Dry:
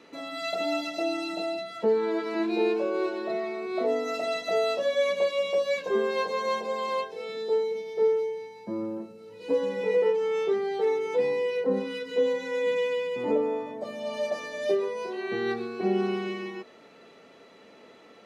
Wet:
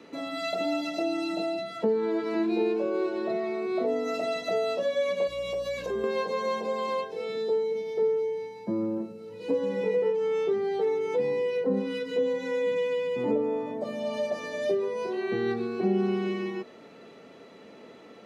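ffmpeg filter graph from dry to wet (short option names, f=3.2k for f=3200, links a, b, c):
-filter_complex "[0:a]asettb=1/sr,asplit=3[a][b][c];[a]atrim=end=5.274[d];[b]atrim=start=5.27:end=6.04,asetpts=PTS-STARTPTS,afade=t=in:d=0.004:c=qsin,afade=t=out:st=0.766:d=0.004:c=qsin,highshelf=f=6.8k:g=10,acompressor=threshold=-31dB:ratio=4:attack=3.2:release=140:knee=1:detection=peak,aeval=exprs='val(0)+0.00224*(sin(2*PI*60*n/s)+sin(2*PI*2*60*n/s)/2+sin(2*PI*3*60*n/s)/3+sin(2*PI*4*60*n/s)/4+sin(2*PI*5*60*n/s)/5)':c=same[e];[c]atrim=start=6.036[f];[d][e]acrossfade=d=0.004:c1=hsin:c2=qsin[g];[g][f]acrossfade=d=0.004:c1=qsin:c2=hsin,highpass=75,lowshelf=f=460:g=7.5,acrossover=split=180[h][i];[i]acompressor=threshold=-28dB:ratio=2[j];[h][j]amix=inputs=2:normalize=0"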